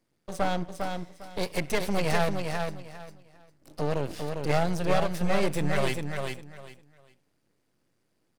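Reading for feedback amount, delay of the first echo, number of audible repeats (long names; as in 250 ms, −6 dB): 22%, 402 ms, 3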